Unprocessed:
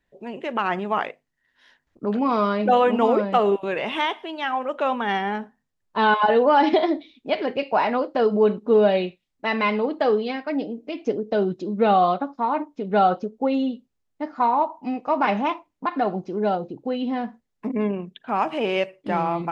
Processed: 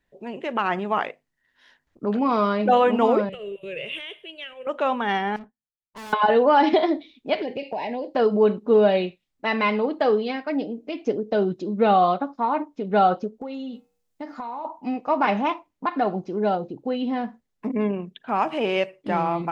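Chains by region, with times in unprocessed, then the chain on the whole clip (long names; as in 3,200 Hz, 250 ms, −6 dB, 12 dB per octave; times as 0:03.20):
0:03.29–0:04.67: downward compressor 10 to 1, threshold −22 dBFS + drawn EQ curve 150 Hz 0 dB, 260 Hz −22 dB, 380 Hz −7 dB, 550 Hz −3 dB, 820 Hz −30 dB, 1,700 Hz −12 dB, 2,800 Hz +2 dB, 5,300 Hz −17 dB, 8,800 Hz 0 dB
0:05.36–0:06.13: low-shelf EQ 420 Hz +9.5 dB + tube saturation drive 37 dB, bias 0.3 + expander for the loud parts 2.5 to 1, over −58 dBFS
0:07.42–0:08.15: Butterworth band-reject 1,300 Hz, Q 1.3 + downward compressor, threshold −25 dBFS
0:13.41–0:14.65: high-shelf EQ 4,200 Hz +9 dB + hum removal 95.92 Hz, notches 27 + downward compressor 16 to 1, threshold −29 dBFS
whole clip: no processing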